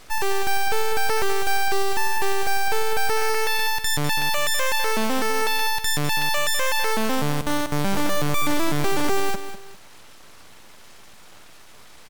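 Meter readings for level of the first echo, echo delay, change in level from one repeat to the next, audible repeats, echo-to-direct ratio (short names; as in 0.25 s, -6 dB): -11.0 dB, 0.2 s, -9.5 dB, 2, -10.5 dB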